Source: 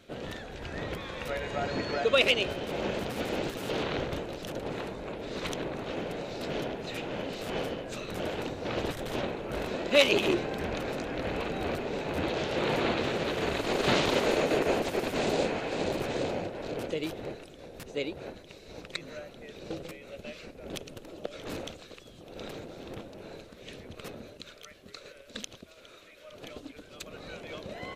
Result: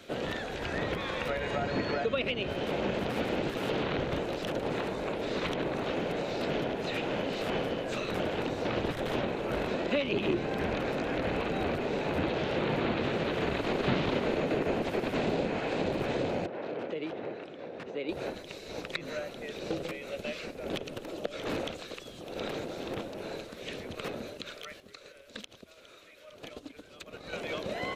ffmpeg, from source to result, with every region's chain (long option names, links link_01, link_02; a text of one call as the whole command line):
ffmpeg -i in.wav -filter_complex "[0:a]asettb=1/sr,asplit=3[link_01][link_02][link_03];[link_01]atrim=end=16.464[link_04];[link_02]atrim=start=16.46:end=18.09,asetpts=PTS-STARTPTS,afade=type=in:duration=0.004:curve=qsin,afade=type=out:start_time=1.626:duration=0.004:curve=qsin,highpass=140,lowpass=2400,acompressor=threshold=-43dB:ratio=2:attack=3.2:release=140:knee=1:detection=peak[link_05];[link_03]atrim=start=18.086[link_06];[link_04][link_05]acrossfade=duration=0.004:curve1=hsin:curve2=qsin[link_07];[link_07][link_06]acrossfade=duration=0.004:curve1=qsin:curve2=hsin,asettb=1/sr,asplit=3[link_08][link_09][link_10];[link_08]atrim=end=24.804[link_11];[link_09]atrim=start=24.8:end=27.33,asetpts=PTS-STARTPTS,afade=type=in:duration=0.004:curve=qsin,afade=type=out:start_time=2.526:duration=0.004:curve=qsin,equalizer=frequency=70:width_type=o:width=1.9:gain=4,acompressor=threshold=-47dB:ratio=2:attack=3.2:release=140:knee=1:detection=peak,agate=range=-8dB:threshold=-49dB:ratio=16:release=100:detection=peak[link_12];[link_10]atrim=start=27.326[link_13];[link_11][link_12]acrossfade=duration=0.004:curve1=hsin:curve2=qsin[link_14];[link_14][link_13]acrossfade=duration=0.004:curve1=qsin:curve2=hsin,acrossover=split=3900[link_15][link_16];[link_16]acompressor=threshold=-55dB:ratio=4:attack=1:release=60[link_17];[link_15][link_17]amix=inputs=2:normalize=0,lowshelf=frequency=150:gain=-8.5,acrossover=split=240[link_18][link_19];[link_19]acompressor=threshold=-37dB:ratio=6[link_20];[link_18][link_20]amix=inputs=2:normalize=0,volume=7dB" out.wav